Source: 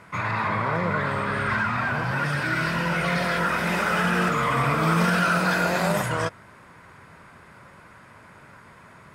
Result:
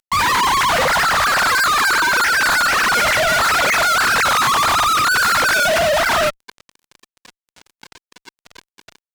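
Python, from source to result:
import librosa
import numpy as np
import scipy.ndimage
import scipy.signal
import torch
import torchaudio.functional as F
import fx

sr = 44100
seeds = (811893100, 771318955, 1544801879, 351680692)

y = fx.sine_speech(x, sr)
y = fx.fuzz(y, sr, gain_db=46.0, gate_db=-44.0)
y = y * librosa.db_to_amplitude(-1.5)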